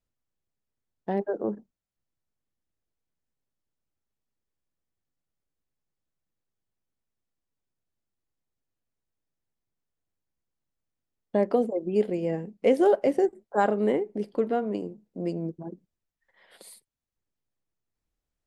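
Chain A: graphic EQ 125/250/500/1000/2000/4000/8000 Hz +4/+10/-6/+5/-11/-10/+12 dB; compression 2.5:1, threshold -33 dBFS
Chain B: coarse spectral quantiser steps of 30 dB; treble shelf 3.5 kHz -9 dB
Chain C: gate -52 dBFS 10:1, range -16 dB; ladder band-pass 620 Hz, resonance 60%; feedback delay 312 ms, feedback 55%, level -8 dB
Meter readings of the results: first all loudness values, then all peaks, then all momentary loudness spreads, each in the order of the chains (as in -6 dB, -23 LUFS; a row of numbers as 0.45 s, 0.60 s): -34.5 LUFS, -28.0 LUFS, -34.5 LUFS; -18.5 dBFS, -11.0 dBFS, -16.0 dBFS; 11 LU, 13 LU, 20 LU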